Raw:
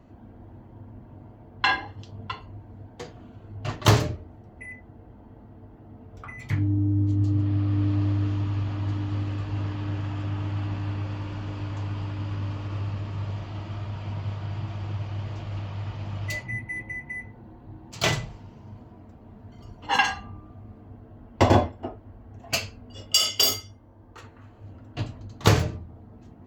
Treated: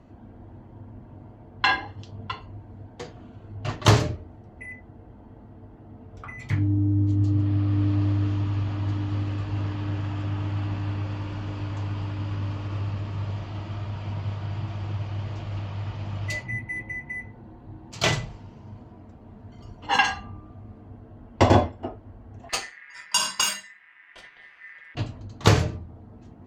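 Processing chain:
low-pass filter 10,000 Hz 12 dB per octave
0:22.49–0:24.95: ring modulation 1,900 Hz
level +1 dB

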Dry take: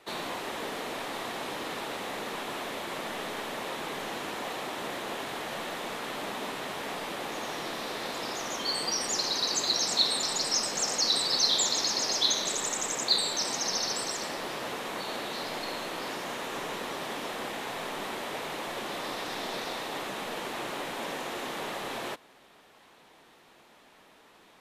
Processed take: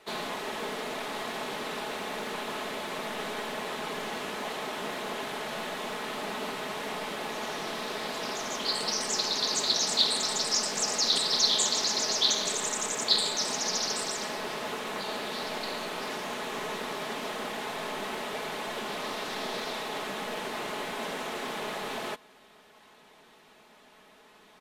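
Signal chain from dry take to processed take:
comb filter 4.7 ms, depth 45%
highs frequency-modulated by the lows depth 0.19 ms

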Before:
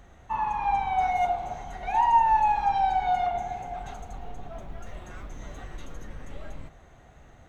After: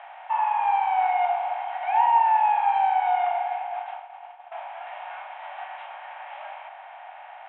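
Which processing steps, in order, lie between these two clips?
compressor on every frequency bin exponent 0.6
Chebyshev band-pass filter 590–3,300 Hz, order 5
0:02.18–0:04.52: downward expander −26 dBFS

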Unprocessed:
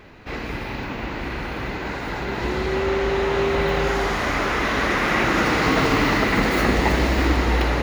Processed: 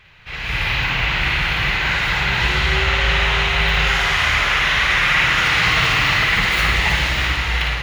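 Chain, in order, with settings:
drawn EQ curve 160 Hz 0 dB, 240 Hz −19 dB, 3,100 Hz +10 dB, 4,700 Hz +2 dB, 8,500 Hz +2 dB, 16,000 Hz −1 dB
automatic gain control gain up to 15 dB
on a send: flutter between parallel walls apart 9.4 metres, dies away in 0.5 s
on the sum: level −5 dB

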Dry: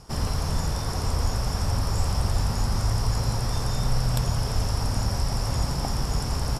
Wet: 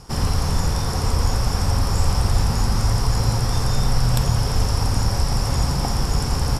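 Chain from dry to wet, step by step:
notch filter 630 Hz, Q 12
convolution reverb RT60 0.35 s, pre-delay 39 ms, DRR 9.5 dB
level +5 dB

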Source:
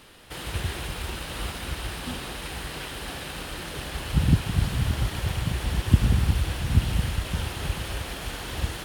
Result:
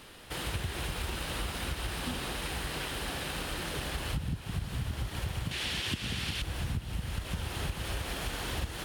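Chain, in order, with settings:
0:05.51–0:06.42: meter weighting curve D
downward compressor 16 to 1, threshold −30 dBFS, peak gain reduction 18 dB

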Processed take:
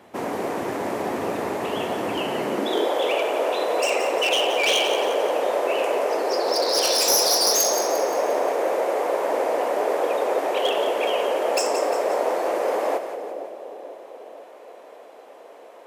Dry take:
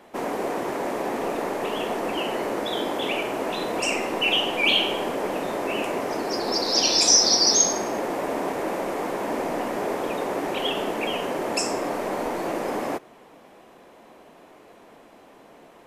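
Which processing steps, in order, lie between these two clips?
wavefolder on the positive side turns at −19 dBFS
echo with a time of its own for lows and highs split 780 Hz, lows 484 ms, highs 175 ms, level −9 dB
high-pass filter sweep 91 Hz → 510 Hz, 0:02.32–0:02.89

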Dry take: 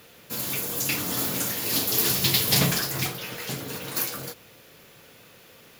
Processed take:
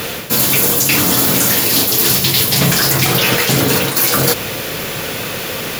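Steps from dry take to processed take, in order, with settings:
reversed playback
downward compressor 12 to 1, threshold −38 dBFS, peak gain reduction 22 dB
reversed playback
boost into a limiter +30 dB
level −1 dB

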